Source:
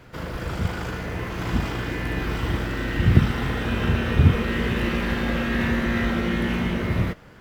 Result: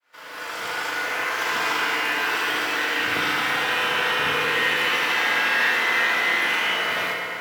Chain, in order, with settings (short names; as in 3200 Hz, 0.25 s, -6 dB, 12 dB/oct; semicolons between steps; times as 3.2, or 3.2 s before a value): opening faded in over 1.10 s; HPF 1000 Hz 12 dB/oct; in parallel at +2.5 dB: compressor, threshold -43 dBFS, peak gain reduction 15 dB; on the sum: FDN reverb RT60 3.6 s, high-frequency decay 0.55×, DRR -2 dB; gain +4.5 dB